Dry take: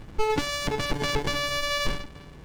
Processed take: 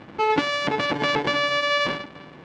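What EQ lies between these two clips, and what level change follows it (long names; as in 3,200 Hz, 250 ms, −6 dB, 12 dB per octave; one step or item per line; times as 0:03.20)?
band-pass filter 220–3,200 Hz
notch filter 420 Hz, Q 12
+7.0 dB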